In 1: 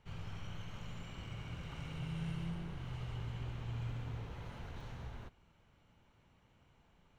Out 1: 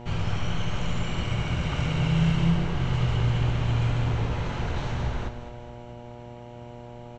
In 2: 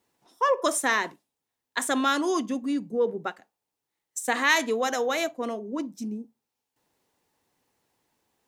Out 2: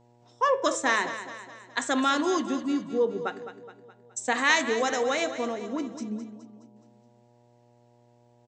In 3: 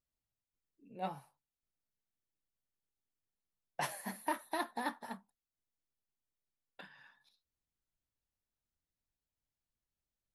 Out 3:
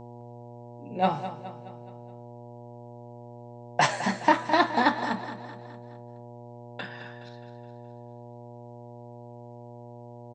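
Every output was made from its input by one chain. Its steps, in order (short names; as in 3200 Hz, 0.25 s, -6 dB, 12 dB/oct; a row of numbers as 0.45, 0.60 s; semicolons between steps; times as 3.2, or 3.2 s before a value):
steep low-pass 8100 Hz 96 dB/oct; de-hum 109.2 Hz, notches 40; buzz 120 Hz, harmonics 8, -60 dBFS -3 dB/oct; on a send: feedback echo 0.21 s, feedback 51%, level -12 dB; on the sum: match loudness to -27 LUFS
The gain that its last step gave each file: +18.0, 0.0, +16.0 dB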